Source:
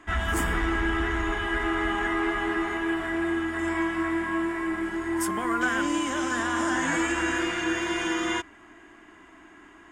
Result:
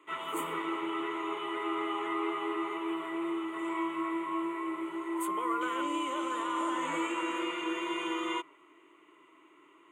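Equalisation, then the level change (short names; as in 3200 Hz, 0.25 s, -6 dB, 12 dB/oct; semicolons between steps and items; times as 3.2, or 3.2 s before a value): elliptic high-pass 160 Hz; dynamic EQ 810 Hz, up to +5 dB, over -44 dBFS, Q 0.93; fixed phaser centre 1100 Hz, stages 8; -4.5 dB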